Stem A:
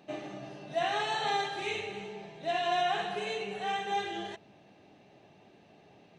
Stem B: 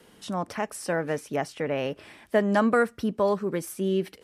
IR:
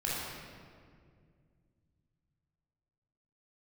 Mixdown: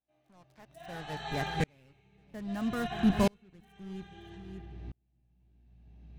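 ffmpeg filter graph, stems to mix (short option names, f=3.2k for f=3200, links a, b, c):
-filter_complex "[0:a]bandreject=f=50:t=h:w=6,bandreject=f=100:t=h:w=6,bandreject=f=150:t=h:w=6,bandreject=f=200:t=h:w=6,aeval=exprs='val(0)+0.000562*(sin(2*PI*60*n/s)+sin(2*PI*2*60*n/s)/2+sin(2*PI*3*60*n/s)/3+sin(2*PI*4*60*n/s)/4+sin(2*PI*5*60*n/s)/5)':c=same,flanger=delay=16:depth=3.5:speed=0.4,volume=-0.5dB,asplit=2[a][b];[b]volume=-6.5dB[c];[1:a]acrusher=bits=4:mix=0:aa=0.5,volume=-2dB,asplit=2[d][e];[e]volume=-18.5dB[f];[2:a]atrim=start_sample=2205[g];[c][g]afir=irnorm=-1:irlink=0[h];[f]aecho=0:1:575:1[i];[a][d][h][i]amix=inputs=4:normalize=0,asubboost=boost=10.5:cutoff=180,aeval=exprs='val(0)*pow(10,-38*if(lt(mod(-0.61*n/s,1),2*abs(-0.61)/1000),1-mod(-0.61*n/s,1)/(2*abs(-0.61)/1000),(mod(-0.61*n/s,1)-2*abs(-0.61)/1000)/(1-2*abs(-0.61)/1000))/20)':c=same"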